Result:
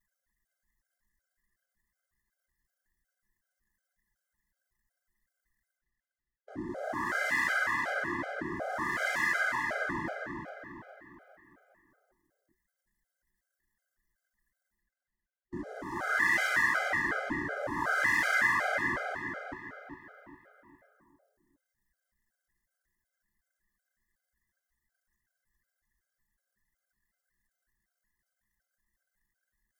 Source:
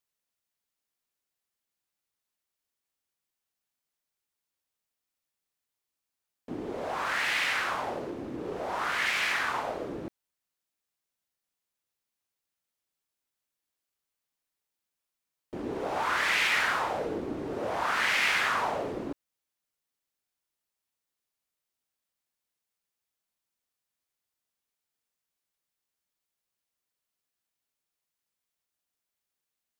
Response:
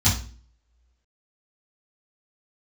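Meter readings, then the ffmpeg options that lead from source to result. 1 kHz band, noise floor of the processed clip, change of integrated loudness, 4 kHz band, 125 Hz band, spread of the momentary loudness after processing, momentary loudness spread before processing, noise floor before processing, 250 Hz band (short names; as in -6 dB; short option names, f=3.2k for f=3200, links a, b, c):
-2.5 dB, under -85 dBFS, -1.0 dB, -10.5 dB, -0.5 dB, 19 LU, 15 LU, under -85 dBFS, -1.0 dB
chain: -filter_complex "[0:a]superequalizer=7b=0.355:11b=2:12b=0.355,areverse,acompressor=mode=upward:threshold=-32dB:ratio=2.5,areverse,anlmdn=0.00251,equalizer=f=3.6k:t=o:w=0.75:g=-10,bandreject=f=830:w=12,asplit=2[a][b];[b]adelay=406,lowpass=f=4.5k:p=1,volume=-4dB,asplit=2[c][d];[d]adelay=406,lowpass=f=4.5k:p=1,volume=0.47,asplit=2[e][f];[f]adelay=406,lowpass=f=4.5k:p=1,volume=0.47,asplit=2[g][h];[h]adelay=406,lowpass=f=4.5k:p=1,volume=0.47,asplit=2[i][j];[j]adelay=406,lowpass=f=4.5k:p=1,volume=0.47,asplit=2[k][l];[l]adelay=406,lowpass=f=4.5k:p=1,volume=0.47[m];[a][c][e][g][i][k][m]amix=inputs=7:normalize=0,afftfilt=real='re*gt(sin(2*PI*2.7*pts/sr)*(1-2*mod(floor(b*sr/1024/410),2)),0)':imag='im*gt(sin(2*PI*2.7*pts/sr)*(1-2*mod(floor(b*sr/1024/410),2)),0)':win_size=1024:overlap=0.75"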